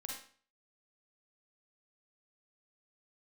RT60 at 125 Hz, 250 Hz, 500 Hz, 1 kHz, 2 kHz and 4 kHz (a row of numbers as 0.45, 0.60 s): 0.50, 0.45, 0.45, 0.45, 0.45, 0.40 s